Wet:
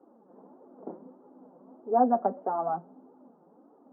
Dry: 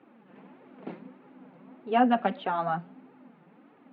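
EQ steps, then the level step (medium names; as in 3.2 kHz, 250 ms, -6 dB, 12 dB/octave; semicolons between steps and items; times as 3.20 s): high-pass 370 Hz 12 dB/octave; Bessel low-pass 640 Hz, order 8; +5.0 dB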